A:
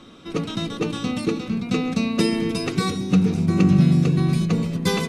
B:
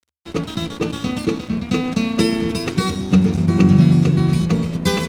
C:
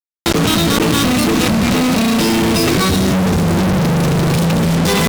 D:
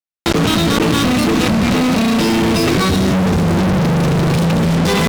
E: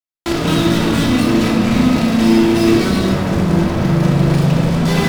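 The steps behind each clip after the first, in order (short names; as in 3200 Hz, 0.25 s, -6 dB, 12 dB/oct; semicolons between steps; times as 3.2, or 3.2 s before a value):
crossover distortion -37.5 dBFS; bell 75 Hz +13.5 dB 0.36 oct; gain +4 dB
fuzz box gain 41 dB, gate -34 dBFS; fast leveller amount 100%
high shelf 6900 Hz -8 dB
shoebox room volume 1100 m³, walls mixed, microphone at 2.9 m; gain -8 dB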